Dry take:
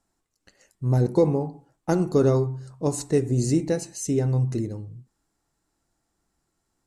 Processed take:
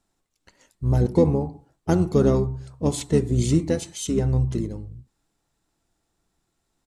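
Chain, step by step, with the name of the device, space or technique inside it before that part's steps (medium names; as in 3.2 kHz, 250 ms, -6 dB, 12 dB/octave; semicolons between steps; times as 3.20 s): octave pedal (harmony voices -12 st -5 dB)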